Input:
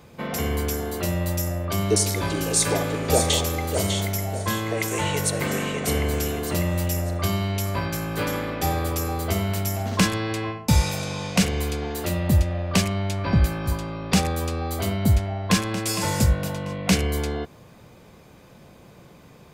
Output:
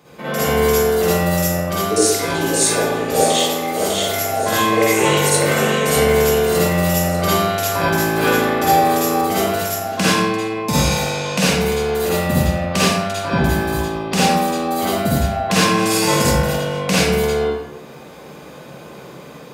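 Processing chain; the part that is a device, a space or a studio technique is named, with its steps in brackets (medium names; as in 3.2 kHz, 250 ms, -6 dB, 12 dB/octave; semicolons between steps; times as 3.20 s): 9.21–10.52 s: expander -22 dBFS; far laptop microphone (reverberation RT60 0.85 s, pre-delay 44 ms, DRR -9 dB; high-pass 130 Hz 12 dB/octave; level rider gain up to 5 dB); peaking EQ 99 Hz -4.5 dB 0.63 oct; trim -1 dB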